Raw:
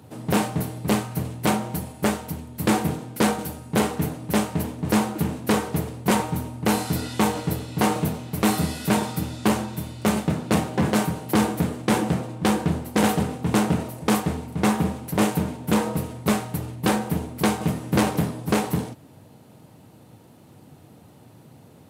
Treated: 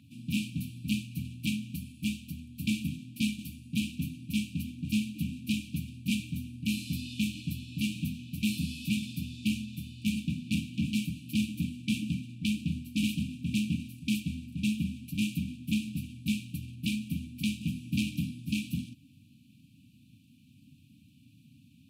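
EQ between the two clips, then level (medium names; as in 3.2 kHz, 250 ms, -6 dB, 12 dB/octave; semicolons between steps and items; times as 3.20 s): brick-wall FIR band-stop 290–2300 Hz; tone controls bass -12 dB, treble -13 dB; bass shelf 61 Hz +10 dB; 0.0 dB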